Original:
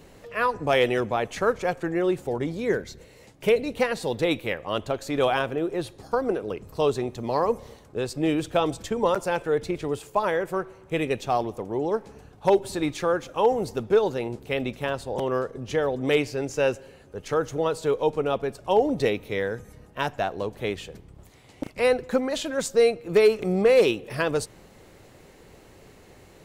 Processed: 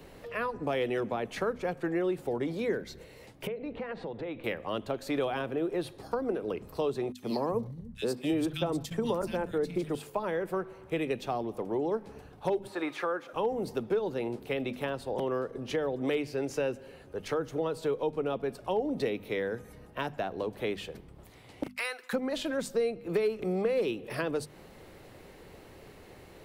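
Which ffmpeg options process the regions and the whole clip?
ffmpeg -i in.wav -filter_complex "[0:a]asettb=1/sr,asplit=3[link_01][link_02][link_03];[link_01]atrim=end=3.474[link_04];[link_02]atrim=start=3.47:end=4.44,asetpts=PTS-STARTPTS,afade=type=in:duration=0.004:curve=qsin,afade=type=out:start_time=0.966:duration=0.004:curve=qsin,lowpass=2000,acompressor=threshold=-33dB:ratio=8:attack=3.2:release=140:knee=1:detection=peak[link_05];[link_03]atrim=start=4.436[link_06];[link_04][link_05]acrossfade=duration=0.004:curve1=hsin:curve2=qsin[link_07];[link_07][link_06]acrossfade=duration=0.004:curve1=qsin:curve2=hsin,asettb=1/sr,asplit=3[link_08][link_09][link_10];[link_08]atrim=end=7.124[link_11];[link_09]atrim=start=7.12:end=9.95,asetpts=PTS-STARTPTS,afade=type=in:duration=0.004:curve=qsin,afade=type=out:start_time=2.826:duration=0.004:curve=qsin,agate=range=-20dB:threshold=-42dB:ratio=16:release=100:detection=peak,bass=frequency=250:gain=11,treble=frequency=4000:gain=6,acrossover=split=160|2200[link_12][link_13][link_14];[link_13]adelay=70[link_15];[link_12]adelay=360[link_16];[link_16][link_15][link_14]amix=inputs=3:normalize=0,atrim=end_sample=124803[link_17];[link_10]atrim=start=9.946[link_18];[link_11][link_17]acrossfade=duration=0.004:curve1=hsin:curve2=qsin[link_19];[link_19][link_18]acrossfade=duration=0.004:curve1=qsin:curve2=hsin,asettb=1/sr,asplit=3[link_20][link_21][link_22];[link_20]atrim=end=12.674[link_23];[link_21]atrim=start=12.67:end=13.33,asetpts=PTS-STARTPTS,afade=type=in:duration=0.004:curve=qsin,afade=type=out:start_time=0.656:duration=0.004:curve=qsin,acrossover=split=2600[link_24][link_25];[link_25]acompressor=threshold=-46dB:ratio=4:attack=1:release=60[link_26];[link_24][link_26]amix=inputs=2:normalize=0,highpass=430,equalizer=frequency=1300:width_type=o:width=1.1:gain=6.5[link_27];[link_22]atrim=start=13.326[link_28];[link_23][link_27]acrossfade=duration=0.004:curve1=hsin:curve2=qsin[link_29];[link_29][link_28]acrossfade=duration=0.004:curve1=qsin:curve2=hsin,asettb=1/sr,asplit=3[link_30][link_31][link_32];[link_30]atrim=end=21.684[link_33];[link_31]atrim=start=21.68:end=22.13,asetpts=PTS-STARTPTS,afade=type=in:duration=0.004:curve=qsin,afade=type=out:start_time=0.446:duration=0.004:curve=qsin,agate=range=-33dB:threshold=-42dB:ratio=3:release=100:detection=peak,highpass=frequency=1300:width_type=q:width=1.6,highshelf=frequency=3800:gain=10[link_34];[link_32]atrim=start=22.126[link_35];[link_33][link_34]acrossfade=duration=0.004:curve1=hsin:curve2=qsin[link_36];[link_36][link_35]acrossfade=duration=0.004:curve1=qsin:curve2=hsin,equalizer=frequency=6900:width=1.9:gain=-7,bandreject=frequency=50:width_type=h:width=6,bandreject=frequency=100:width_type=h:width=6,bandreject=frequency=150:width_type=h:width=6,bandreject=frequency=200:width_type=h:width=6,bandreject=frequency=250:width_type=h:width=6,acrossover=split=170|340[link_37][link_38][link_39];[link_37]acompressor=threshold=-51dB:ratio=4[link_40];[link_38]acompressor=threshold=-33dB:ratio=4[link_41];[link_39]acompressor=threshold=-33dB:ratio=4[link_42];[link_40][link_41][link_42]amix=inputs=3:normalize=0" out.wav

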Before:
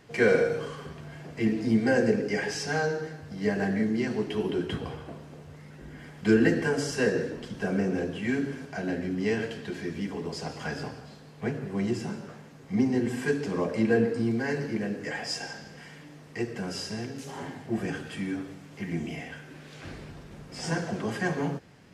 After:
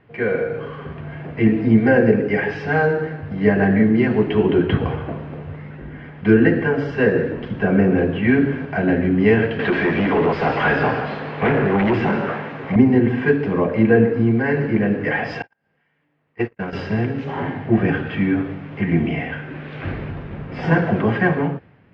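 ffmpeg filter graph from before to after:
ffmpeg -i in.wav -filter_complex "[0:a]asettb=1/sr,asplit=3[link_01][link_02][link_03];[link_01]atrim=end=9.594[link_04];[link_02]atrim=start=9.59:end=12.76,asetpts=PTS-STARTPTS,afade=type=in:duration=0.004:curve=qsin,afade=type=out:start_time=3.166:duration=0.004:curve=qsin,aemphasis=mode=production:type=75kf,asoftclip=type=hard:threshold=-32dB,asplit=2[link_05][link_06];[link_06]highpass=frequency=720:poles=1,volume=21dB,asoftclip=type=tanh:threshold=-18.5dB[link_07];[link_05][link_07]amix=inputs=2:normalize=0,lowpass=frequency=1400:poles=1,volume=-6dB[link_08];[link_03]atrim=start=12.756[link_09];[link_04][link_08]acrossfade=duration=0.004:curve1=hsin:curve2=qsin[link_10];[link_10][link_09]acrossfade=duration=0.004:curve1=qsin:curve2=hsin,asettb=1/sr,asplit=3[link_11][link_12][link_13];[link_11]atrim=end=15.424[link_14];[link_12]atrim=start=15.42:end=16.73,asetpts=PTS-STARTPTS,afade=type=in:duration=0.004:curve=qsin,afade=type=out:start_time=1.306:duration=0.004:curve=qsin,agate=range=-59dB:threshold=-34dB:ratio=16:release=100:detection=peak,lowshelf=frequency=450:gain=-8,acompressor=mode=upward:threshold=-56dB:ratio=2.5:attack=3.2:release=140:knee=2.83:detection=peak[link_15];[link_13]atrim=start=16.726[link_16];[link_14][link_15]acrossfade=duration=0.004:curve1=hsin:curve2=qsin[link_17];[link_17][link_16]acrossfade=duration=0.004:curve1=qsin:curve2=hsin,lowpass=frequency=2700:width=0.5412,lowpass=frequency=2700:width=1.3066,equalizer=frequency=100:width=2.3:gain=5.5,dynaudnorm=framelen=120:gausssize=11:maxgain=13.5dB" out.wav

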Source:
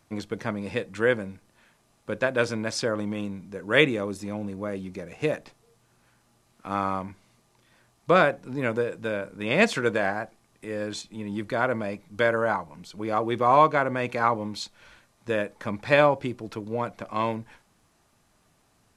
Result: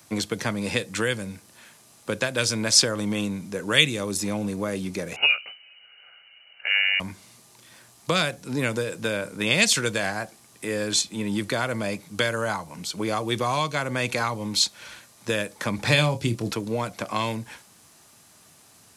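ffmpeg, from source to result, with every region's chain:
ffmpeg -i in.wav -filter_complex "[0:a]asettb=1/sr,asplit=3[link_01][link_02][link_03];[link_01]atrim=end=5.164[link_04];[link_02]atrim=start=5.16:end=7,asetpts=PTS-STARTPTS,afade=type=in:duration=0.004:curve=qsin,afade=type=out:start_time=1.836:duration=0.004:curve=qsin,aecho=1:1:1.3:0.55,atrim=end_sample=81144,lowpass=frequency=2600:width_type=q:width=0.5098,lowpass=frequency=2600:width_type=q:width=0.6013,lowpass=frequency=2600:width_type=q:width=0.9,lowpass=frequency=2600:width_type=q:width=2.563,afreqshift=-3000[link_05];[link_03]atrim=start=6.996[link_06];[link_04][link_05]acrossfade=duration=0.004:curve1=hsin:curve2=qsin[link_07];[link_07][link_06]acrossfade=duration=0.004:curve1=qsin:curve2=hsin,asettb=1/sr,asplit=3[link_08][link_09][link_10];[link_08]atrim=end=15.774[link_11];[link_09]atrim=start=15.77:end=16.52,asetpts=PTS-STARTPTS,afade=type=in:duration=0.004:curve=qsin,afade=type=out:start_time=0.746:duration=0.004:curve=qsin,lowshelf=frequency=370:gain=7,asplit=2[link_12][link_13];[link_13]adelay=26,volume=-10dB[link_14];[link_12][link_14]amix=inputs=2:normalize=0,atrim=end_sample=33075[link_15];[link_10]atrim=start=16.516[link_16];[link_11][link_15]acrossfade=duration=0.004:curve1=hsin:curve2=qsin[link_17];[link_17][link_16]acrossfade=duration=0.004:curve1=qsin:curve2=hsin,highpass=86,highshelf=frequency=3300:gain=12,acrossover=split=150|3000[link_18][link_19][link_20];[link_19]acompressor=threshold=-31dB:ratio=6[link_21];[link_18][link_21][link_20]amix=inputs=3:normalize=0,volume=6.5dB" out.wav

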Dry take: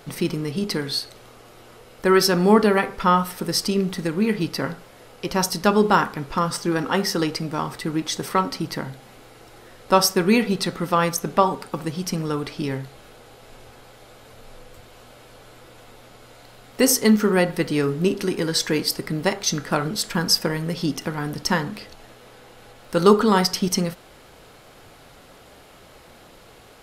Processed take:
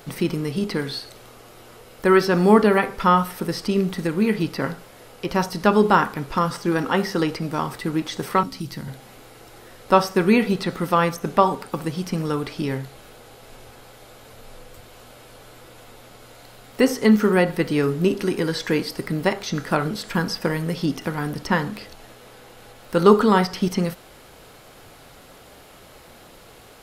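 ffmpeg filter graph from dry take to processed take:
ffmpeg -i in.wav -filter_complex "[0:a]asettb=1/sr,asplit=3[link_01][link_02][link_03];[link_01]atrim=end=8.434[link_04];[link_02]atrim=start=8.43:end=8.88,asetpts=PTS-STARTPTS,afade=type=in:duration=0.004:curve=qsin,afade=type=out:start_time=0.446:duration=0.004:curve=qsin,acrossover=split=230|3000[link_05][link_06][link_07];[link_06]acompressor=threshold=-51dB:ratio=2:attack=3.2:release=140:knee=2.83:detection=peak[link_08];[link_05][link_08][link_07]amix=inputs=3:normalize=0,asoftclip=type=hard:threshold=-22dB,asplit=2[link_09][link_10];[link_10]adelay=15,volume=-13dB[link_11];[link_09][link_11]amix=inputs=2:normalize=0,atrim=end_sample=19845[link_12];[link_03]atrim=start=8.876[link_13];[link_04][link_12]acrossfade=duration=0.004:curve1=hsin:curve2=qsin[link_14];[link_14][link_13]acrossfade=duration=0.004:curve1=qsin:curve2=hsin,acrossover=split=3400[link_15][link_16];[link_16]acompressor=threshold=-40dB:ratio=4:attack=1:release=60[link_17];[link_15][link_17]amix=inputs=2:normalize=0,highshelf=frequency=11000:gain=7,volume=1dB" out.wav

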